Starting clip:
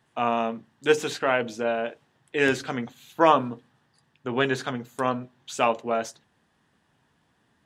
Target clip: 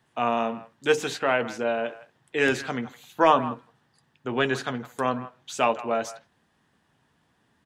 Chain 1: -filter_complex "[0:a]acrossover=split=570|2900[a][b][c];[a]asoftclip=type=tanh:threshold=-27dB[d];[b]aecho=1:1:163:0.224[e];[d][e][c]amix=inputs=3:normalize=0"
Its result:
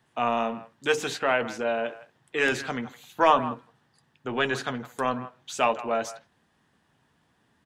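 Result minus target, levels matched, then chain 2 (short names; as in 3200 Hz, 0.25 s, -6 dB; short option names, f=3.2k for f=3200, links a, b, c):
soft clip: distortion +11 dB
-filter_complex "[0:a]acrossover=split=570|2900[a][b][c];[a]asoftclip=type=tanh:threshold=-16.5dB[d];[b]aecho=1:1:163:0.224[e];[d][e][c]amix=inputs=3:normalize=0"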